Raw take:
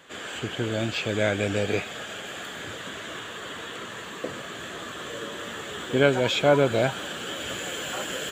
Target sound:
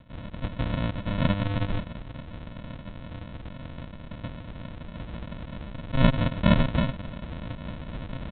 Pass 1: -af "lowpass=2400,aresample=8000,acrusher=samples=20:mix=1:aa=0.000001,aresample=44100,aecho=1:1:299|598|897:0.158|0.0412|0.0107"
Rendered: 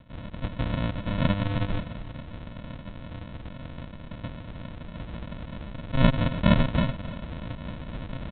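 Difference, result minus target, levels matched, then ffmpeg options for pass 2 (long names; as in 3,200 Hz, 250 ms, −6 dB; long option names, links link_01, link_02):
echo-to-direct +10 dB
-af "lowpass=2400,aresample=8000,acrusher=samples=20:mix=1:aa=0.000001,aresample=44100,aecho=1:1:299|598:0.0501|0.013"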